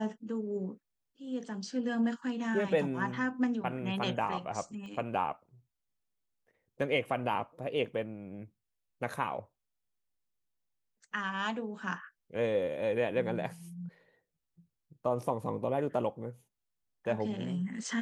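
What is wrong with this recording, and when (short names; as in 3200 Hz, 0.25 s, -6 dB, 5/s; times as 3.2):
4.86 pop -36 dBFS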